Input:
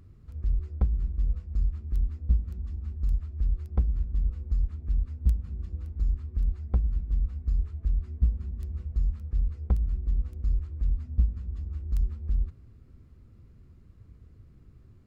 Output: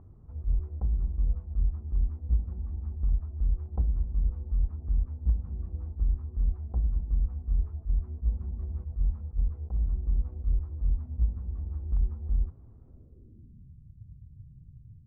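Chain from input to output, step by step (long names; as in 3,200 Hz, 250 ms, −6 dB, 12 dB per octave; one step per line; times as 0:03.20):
low-pass filter sweep 850 Hz → 140 Hz, 0:12.84–0:13.74
level that may rise only so fast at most 330 dB per second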